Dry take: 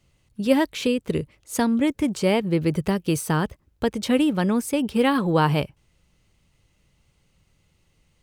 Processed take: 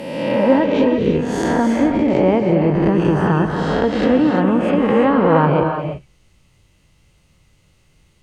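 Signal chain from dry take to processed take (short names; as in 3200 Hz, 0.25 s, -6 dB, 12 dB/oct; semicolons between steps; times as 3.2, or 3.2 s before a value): spectral swells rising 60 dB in 1.41 s; treble ducked by the level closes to 1300 Hz, closed at -15.5 dBFS; non-linear reverb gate 0.37 s rising, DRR 4 dB; gain +3.5 dB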